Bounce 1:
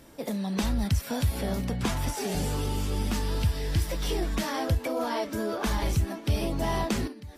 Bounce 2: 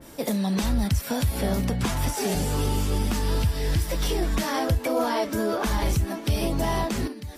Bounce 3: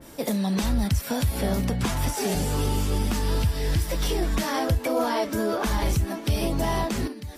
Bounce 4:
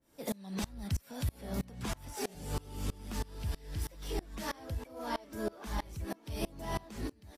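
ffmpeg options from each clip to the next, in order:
ffmpeg -i in.wav -af "highshelf=frequency=4400:gain=6,alimiter=limit=-20.5dB:level=0:latency=1:release=242,adynamicequalizer=threshold=0.00501:dfrequency=2300:dqfactor=0.7:tfrequency=2300:tqfactor=0.7:attack=5:release=100:ratio=0.375:range=2:mode=cutabove:tftype=highshelf,volume=6dB" out.wav
ffmpeg -i in.wav -af anull out.wav
ffmpeg -i in.wav -filter_complex "[0:a]asplit=2[link_01][link_02];[link_02]asoftclip=type=tanh:threshold=-27.5dB,volume=-8dB[link_03];[link_01][link_03]amix=inputs=2:normalize=0,aecho=1:1:1152:0.133,aeval=exprs='val(0)*pow(10,-27*if(lt(mod(-3.1*n/s,1),2*abs(-3.1)/1000),1-mod(-3.1*n/s,1)/(2*abs(-3.1)/1000),(mod(-3.1*n/s,1)-2*abs(-3.1)/1000)/(1-2*abs(-3.1)/1000))/20)':channel_layout=same,volume=-7.5dB" out.wav

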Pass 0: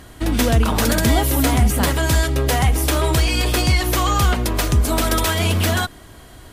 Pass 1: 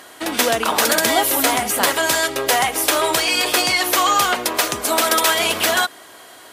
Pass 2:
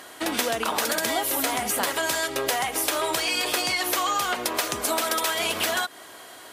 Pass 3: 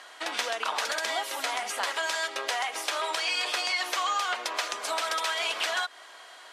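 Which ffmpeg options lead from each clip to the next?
ffmpeg -i in.wav -af "highpass=500,volume=5dB" out.wav
ffmpeg -i in.wav -af "acompressor=threshold=-20dB:ratio=6,volume=-2dB" out.wav
ffmpeg -i in.wav -af "highpass=710,lowpass=6000,volume=-2dB" out.wav

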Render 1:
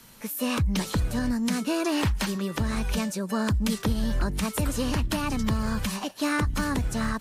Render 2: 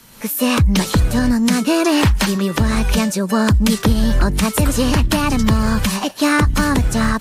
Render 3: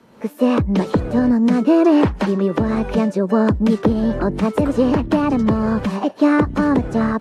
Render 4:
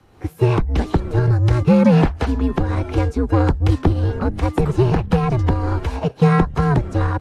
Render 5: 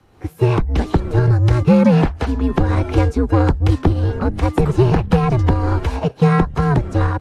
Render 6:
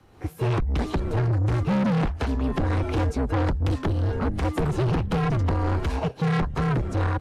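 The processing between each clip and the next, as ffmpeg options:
ffmpeg -i in.wav -af "dynaudnorm=framelen=100:gausssize=3:maxgain=6dB,volume=5dB" out.wav
ffmpeg -i in.wav -af "bandpass=frequency=420:width_type=q:width=0.95:csg=0,volume=4.5dB" out.wav
ffmpeg -i in.wav -af "aeval=exprs='0.891*(cos(1*acos(clip(val(0)/0.891,-1,1)))-cos(1*PI/2))+0.0398*(cos(7*acos(clip(val(0)/0.891,-1,1)))-cos(7*PI/2))':channel_layout=same,afreqshift=-130,volume=1dB" out.wav
ffmpeg -i in.wav -af "dynaudnorm=framelen=220:gausssize=3:maxgain=11.5dB,volume=-1dB" out.wav
ffmpeg -i in.wav -af "asoftclip=type=tanh:threshold=-18.5dB,volume=-1.5dB" out.wav

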